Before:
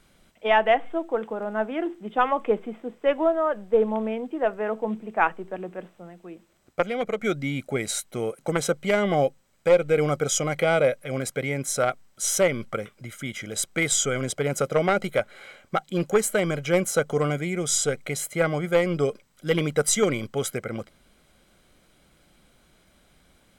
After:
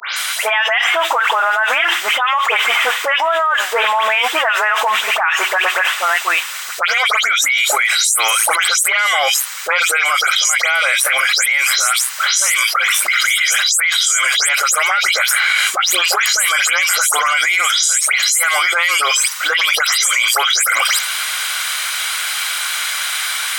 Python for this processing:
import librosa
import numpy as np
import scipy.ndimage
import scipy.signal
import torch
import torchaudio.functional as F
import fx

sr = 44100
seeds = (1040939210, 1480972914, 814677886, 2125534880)

y = fx.spec_delay(x, sr, highs='late', ms=160)
y = scipy.signal.sosfilt(scipy.signal.butter(4, 1200.0, 'highpass', fs=sr, output='sos'), y)
y = fx.env_flatten(y, sr, amount_pct=100)
y = y * librosa.db_to_amplitude(5.0)